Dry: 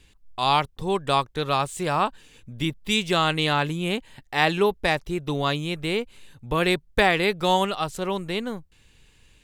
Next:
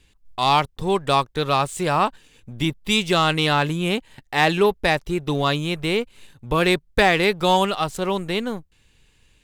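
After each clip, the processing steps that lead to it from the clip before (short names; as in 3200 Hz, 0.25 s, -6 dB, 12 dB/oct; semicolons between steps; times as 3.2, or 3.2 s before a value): sample leveller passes 1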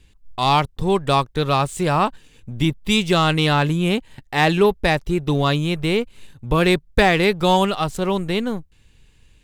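low shelf 260 Hz +7 dB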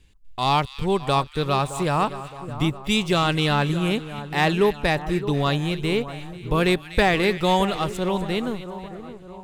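split-band echo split 1500 Hz, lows 0.617 s, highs 0.245 s, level -13 dB; gain -3.5 dB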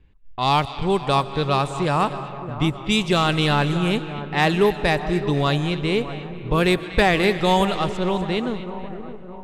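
digital reverb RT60 2.9 s, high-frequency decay 0.7×, pre-delay 95 ms, DRR 14 dB; low-pass opened by the level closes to 1700 Hz, open at -16 dBFS; gain +1.5 dB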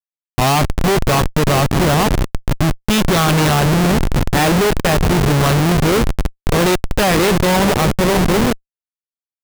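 Schmitt trigger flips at -23.5 dBFS; gain +8.5 dB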